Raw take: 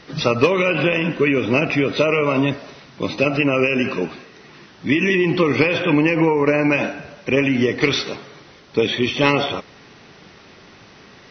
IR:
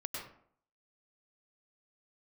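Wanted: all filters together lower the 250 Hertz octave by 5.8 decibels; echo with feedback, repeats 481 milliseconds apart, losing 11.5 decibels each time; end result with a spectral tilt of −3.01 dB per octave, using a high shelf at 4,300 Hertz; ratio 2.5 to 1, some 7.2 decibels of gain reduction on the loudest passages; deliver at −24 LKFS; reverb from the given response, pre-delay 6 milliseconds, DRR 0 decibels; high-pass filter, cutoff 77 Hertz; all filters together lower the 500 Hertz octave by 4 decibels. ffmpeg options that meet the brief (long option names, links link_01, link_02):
-filter_complex "[0:a]highpass=77,equalizer=frequency=250:width_type=o:gain=-6.5,equalizer=frequency=500:width_type=o:gain=-3,highshelf=frequency=4300:gain=8,acompressor=threshold=-24dB:ratio=2.5,aecho=1:1:481|962|1443:0.266|0.0718|0.0194,asplit=2[link_01][link_02];[1:a]atrim=start_sample=2205,adelay=6[link_03];[link_02][link_03]afir=irnorm=-1:irlink=0,volume=-1dB[link_04];[link_01][link_04]amix=inputs=2:normalize=0,volume=-1dB"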